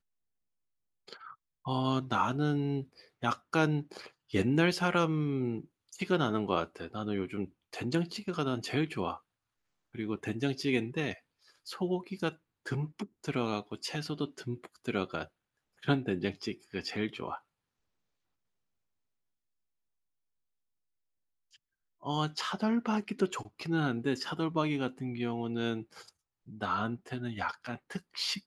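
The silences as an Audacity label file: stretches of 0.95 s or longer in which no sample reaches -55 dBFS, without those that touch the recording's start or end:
17.390000	21.530000	silence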